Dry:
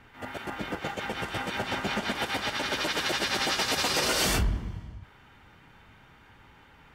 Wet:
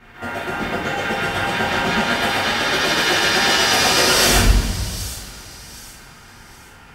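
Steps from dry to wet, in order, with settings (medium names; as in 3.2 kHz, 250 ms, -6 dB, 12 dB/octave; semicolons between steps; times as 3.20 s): feedback echo behind a high-pass 770 ms, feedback 34%, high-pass 5.1 kHz, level -10.5 dB; two-slope reverb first 0.6 s, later 3.3 s, from -17 dB, DRR -8.5 dB; trim +2.5 dB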